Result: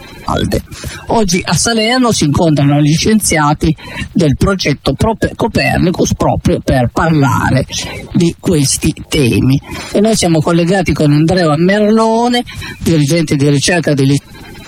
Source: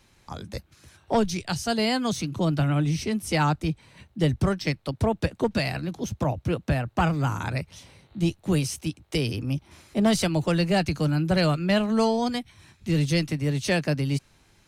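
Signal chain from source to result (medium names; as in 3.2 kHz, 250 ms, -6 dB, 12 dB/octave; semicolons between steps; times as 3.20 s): coarse spectral quantiser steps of 30 dB; compression 6:1, threshold -34 dBFS, peak gain reduction 16 dB; loudness maximiser +30.5 dB; trim -1 dB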